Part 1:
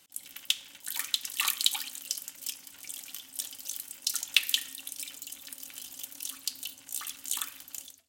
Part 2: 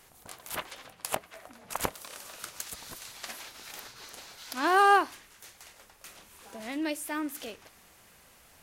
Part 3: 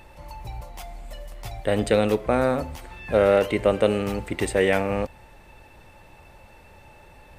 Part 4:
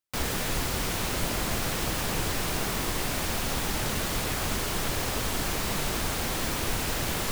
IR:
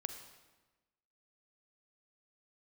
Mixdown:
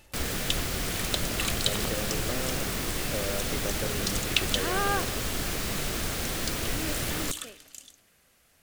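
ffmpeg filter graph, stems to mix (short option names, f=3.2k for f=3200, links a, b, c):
-filter_complex "[0:a]lowpass=9.4k,volume=-2dB[a];[1:a]volume=-8.5dB,asplit=2[b][c];[c]volume=-7dB[d];[2:a]acompressor=threshold=-21dB:ratio=6,volume=-9.5dB[e];[3:a]volume=-3.5dB,asplit=2[f][g];[g]volume=-8.5dB[h];[4:a]atrim=start_sample=2205[i];[d][h]amix=inputs=2:normalize=0[j];[j][i]afir=irnorm=-1:irlink=0[k];[a][b][e][f][k]amix=inputs=5:normalize=0,equalizer=f=920:t=o:w=0.54:g=-7"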